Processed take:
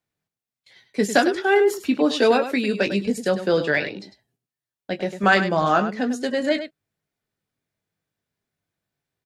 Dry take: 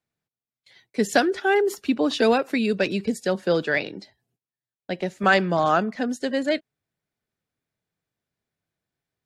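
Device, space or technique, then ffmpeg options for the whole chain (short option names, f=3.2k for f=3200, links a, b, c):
slapback doubling: -filter_complex "[0:a]asettb=1/sr,asplit=3[a][b][c];[a]atrim=end=1.974[d];[b]atrim=start=1.97:end=2.87,asetpts=PTS-STARTPTS,afade=t=in:d=0.004:c=qsin,afade=t=out:st=0.896:d=0.004:c=qsin,highpass=170[e];[c]atrim=start=2.866[f];[d][e]acrossfade=d=0.004:c1=hsin:c2=qsin[g];[g][f]acrossfade=d=0.004:c1=qsin:c2=hsin,asplit=3[h][i][j];[i]adelay=20,volume=-8dB[k];[j]adelay=101,volume=-10.5dB[l];[h][k][l]amix=inputs=3:normalize=0,volume=1dB"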